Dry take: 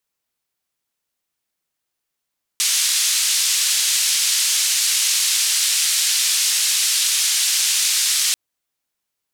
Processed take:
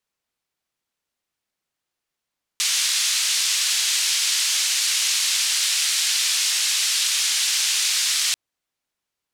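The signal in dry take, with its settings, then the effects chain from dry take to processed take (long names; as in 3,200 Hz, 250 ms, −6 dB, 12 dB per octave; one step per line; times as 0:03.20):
band-limited noise 3,100–8,600 Hz, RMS −18.5 dBFS 5.74 s
high-shelf EQ 8,900 Hz −10 dB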